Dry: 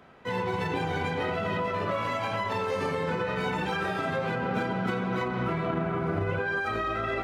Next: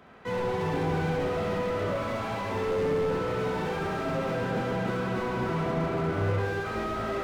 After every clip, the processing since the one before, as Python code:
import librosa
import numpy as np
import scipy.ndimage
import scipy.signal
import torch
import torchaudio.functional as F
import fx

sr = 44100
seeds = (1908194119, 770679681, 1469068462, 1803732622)

y = fx.echo_thinned(x, sr, ms=69, feedback_pct=74, hz=430.0, wet_db=-4.0)
y = fx.rev_spring(y, sr, rt60_s=1.3, pass_ms=(50,), chirp_ms=45, drr_db=4.0)
y = fx.slew_limit(y, sr, full_power_hz=29.0)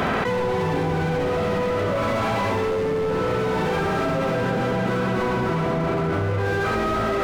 y = fx.env_flatten(x, sr, amount_pct=100)
y = y * 10.0 ** (2.5 / 20.0)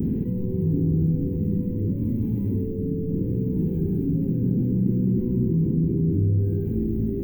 y = scipy.signal.sosfilt(scipy.signal.cheby2(4, 40, [610.0, 9600.0], 'bandstop', fs=sr, output='sos'), x)
y = y * 10.0 ** (4.5 / 20.0)